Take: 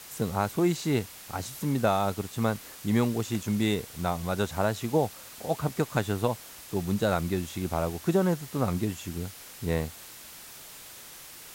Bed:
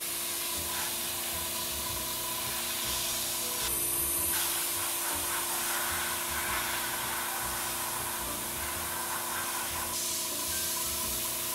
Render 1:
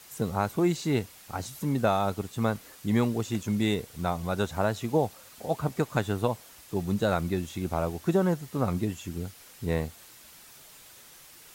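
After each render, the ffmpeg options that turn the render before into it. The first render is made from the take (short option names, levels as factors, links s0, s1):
-af "afftdn=nr=6:nf=-46"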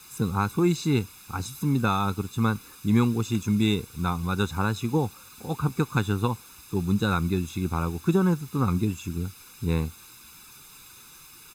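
-af "aecho=1:1:0.8:0.88"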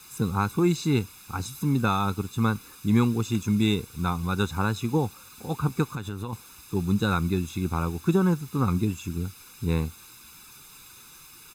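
-filter_complex "[0:a]asettb=1/sr,asplit=3[s0][s1][s2];[s0]atrim=end=5.854[s3];[s1]atrim=start=5.85:end=6.33,asetpts=PTS-STARTPTS,afade=t=in:d=0.004:c=qsin,afade=t=out:st=0.476:d=0.004:c=qsin,acompressor=threshold=0.0355:ratio=6:attack=3.2:release=140:knee=1:detection=peak[s4];[s2]atrim=start=6.326[s5];[s3][s4]acrossfade=d=0.004:c1=hsin:c2=qsin[s6];[s6][s5]acrossfade=d=0.004:c1=qsin:c2=hsin"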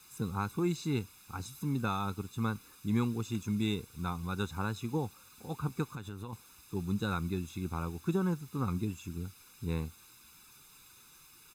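-af "volume=0.355"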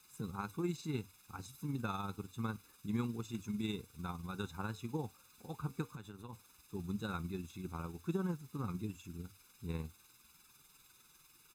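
-af "tremolo=f=20:d=0.462,flanger=delay=4.7:depth=1.2:regen=-82:speed=0.3:shape=triangular"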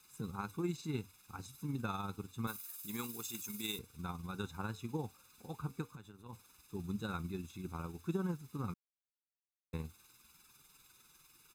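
-filter_complex "[0:a]asettb=1/sr,asplit=3[s0][s1][s2];[s0]atrim=end=2.474[s3];[s1]atrim=start=2.47:end=3.79,asetpts=PTS-STARTPTS,afade=t=in:d=0.004:c=qsin,afade=t=out:st=1.316:d=0.004:c=qsin,aemphasis=mode=production:type=riaa[s4];[s2]atrim=start=3.786[s5];[s3][s4]acrossfade=d=0.004:c1=hsin:c2=qsin[s6];[s6][s5]acrossfade=d=0.004:c1=qsin:c2=hsin,asplit=4[s7][s8][s9][s10];[s7]atrim=end=6.26,asetpts=PTS-STARTPTS,afade=t=out:st=5.55:d=0.71:silence=0.473151[s11];[s8]atrim=start=6.26:end=8.74,asetpts=PTS-STARTPTS,afade=t=in:d=0.004:c=hsin:silence=0.473151,afade=t=out:st=2.476:d=0.004:c=hsin[s12];[s9]atrim=start=8.74:end=9.73,asetpts=PTS-STARTPTS,volume=0[s13];[s10]atrim=start=9.73,asetpts=PTS-STARTPTS,afade=t=in:d=0.004:c=hsin[s14];[s11][s12][s13][s14]concat=n=4:v=0:a=1"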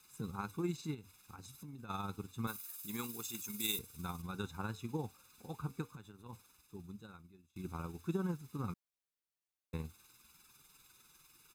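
-filter_complex "[0:a]asplit=3[s0][s1][s2];[s0]afade=t=out:st=0.93:d=0.02[s3];[s1]acompressor=threshold=0.00447:ratio=5:attack=3.2:release=140:knee=1:detection=peak,afade=t=in:st=0.93:d=0.02,afade=t=out:st=1.89:d=0.02[s4];[s2]afade=t=in:st=1.89:d=0.02[s5];[s3][s4][s5]amix=inputs=3:normalize=0,asettb=1/sr,asplit=3[s6][s7][s8];[s6]atrim=end=3.604[s9];[s7]atrim=start=3.6:end=4.22,asetpts=PTS-STARTPTS,afade=t=in:d=0.004:c=qsin,afade=t=out:st=0.616:d=0.004:c=qsin,aemphasis=mode=production:type=cd[s10];[s8]atrim=start=4.216[s11];[s9][s10]acrossfade=d=0.004:c1=hsin:c2=qsin[s12];[s12][s11]acrossfade=d=0.004:c1=qsin:c2=hsin,asplit=2[s13][s14];[s13]atrim=end=7.56,asetpts=PTS-STARTPTS,afade=t=out:st=6.33:d=1.23:c=qua:silence=0.0707946[s15];[s14]atrim=start=7.56,asetpts=PTS-STARTPTS,afade=t=in:d=0.004:c=hsin:silence=0.0707946[s16];[s15][s16]concat=n=2:v=0:a=1"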